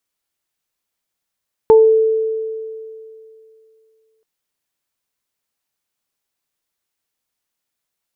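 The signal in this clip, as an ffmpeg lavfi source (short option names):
-f lavfi -i "aevalsrc='0.631*pow(10,-3*t/2.64)*sin(2*PI*442*t)+0.224*pow(10,-3*t/0.3)*sin(2*PI*884*t)':d=2.53:s=44100"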